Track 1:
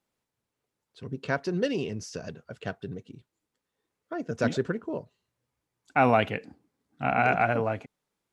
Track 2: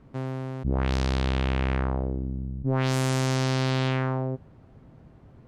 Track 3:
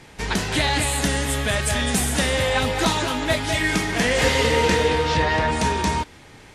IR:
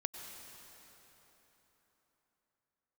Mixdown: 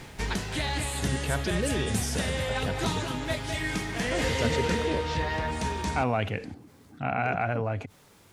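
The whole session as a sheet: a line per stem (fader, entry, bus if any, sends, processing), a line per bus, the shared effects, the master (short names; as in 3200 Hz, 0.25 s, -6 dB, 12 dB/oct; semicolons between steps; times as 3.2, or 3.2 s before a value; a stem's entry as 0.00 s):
-7.0 dB, 0.00 s, no send, bell 95 Hz +10 dB 0.71 oct; fast leveller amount 50%
-18.5 dB, 0.00 s, no send, dry
+2.0 dB, 0.00 s, no send, low shelf 140 Hz +4.5 dB; auto duck -12 dB, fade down 0.40 s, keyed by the first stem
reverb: off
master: dry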